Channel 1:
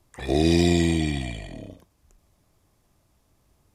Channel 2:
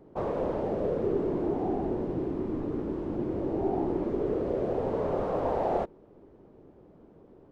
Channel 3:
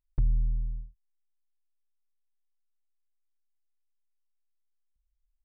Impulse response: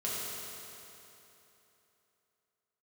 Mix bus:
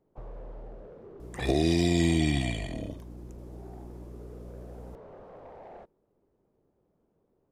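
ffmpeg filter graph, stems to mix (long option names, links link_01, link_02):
-filter_complex "[0:a]aeval=exprs='val(0)+0.00562*(sin(2*PI*60*n/s)+sin(2*PI*2*60*n/s)/2+sin(2*PI*3*60*n/s)/3+sin(2*PI*4*60*n/s)/4+sin(2*PI*5*60*n/s)/5)':channel_layout=same,adelay=1200,volume=2dB[link_01];[1:a]equalizer=frequency=300:width_type=o:width=0.67:gain=-4,asoftclip=type=tanh:threshold=-24.5dB,volume=-16.5dB[link_02];[2:a]acompressor=threshold=-31dB:ratio=6,volume=-10.5dB[link_03];[link_01][link_02][link_03]amix=inputs=3:normalize=0,alimiter=limit=-14dB:level=0:latency=1:release=402"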